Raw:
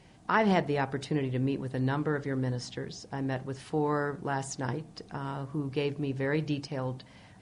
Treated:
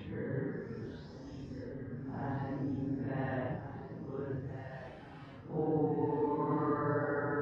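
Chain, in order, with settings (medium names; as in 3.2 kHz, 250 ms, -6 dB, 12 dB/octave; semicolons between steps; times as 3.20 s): tape start-up on the opening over 1.82 s; low-pass 1.9 kHz 12 dB/octave; band-stop 730 Hz, Q 21; two-band feedback delay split 340 Hz, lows 684 ms, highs 251 ms, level -9.5 dB; Paulstretch 5.6×, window 0.05 s, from 2.74 s; trim -4.5 dB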